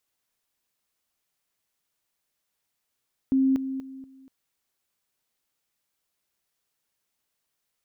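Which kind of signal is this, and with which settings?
level ladder 266 Hz -18 dBFS, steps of -10 dB, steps 4, 0.24 s 0.00 s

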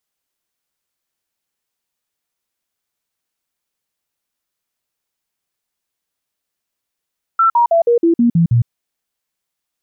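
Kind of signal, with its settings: stepped sine 1.34 kHz down, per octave 2, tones 8, 0.11 s, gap 0.05 s -8.5 dBFS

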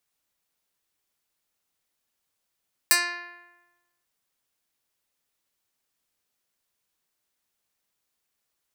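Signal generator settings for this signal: plucked string F4, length 1.14 s, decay 1.16 s, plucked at 0.1, medium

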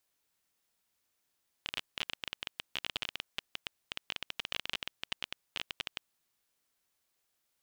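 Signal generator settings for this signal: random clicks 18 per s -17.5 dBFS 4.34 s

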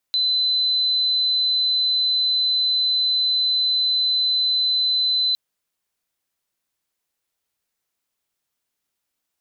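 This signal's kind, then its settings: tone sine 4.03 kHz -17 dBFS 5.21 s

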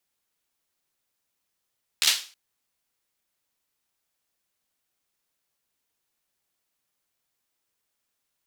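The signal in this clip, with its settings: hand clap length 0.32 s, bursts 5, apart 13 ms, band 3.8 kHz, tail 0.37 s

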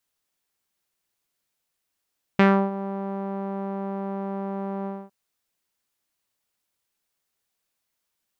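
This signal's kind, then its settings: synth note saw G3 12 dB/octave, low-pass 880 Hz, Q 1.6, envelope 1.5 oct, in 0.22 s, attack 2.8 ms, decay 0.31 s, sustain -16 dB, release 0.24 s, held 2.47 s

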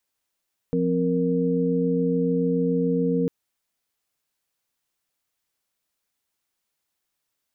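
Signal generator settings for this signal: chord F3/C4/A#4 sine, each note -24 dBFS 2.55 s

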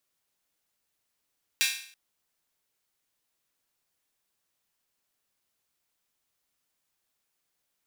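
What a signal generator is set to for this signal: open hi-hat length 0.33 s, high-pass 2.3 kHz, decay 0.54 s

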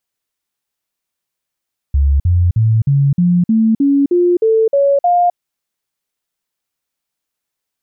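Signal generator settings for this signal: stepped sine 70 Hz up, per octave 3, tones 11, 0.26 s, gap 0.05 s -8.5 dBFS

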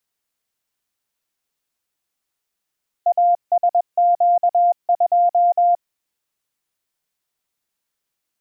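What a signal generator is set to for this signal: Morse "ASQ2" 21 wpm 700 Hz -11.5 dBFS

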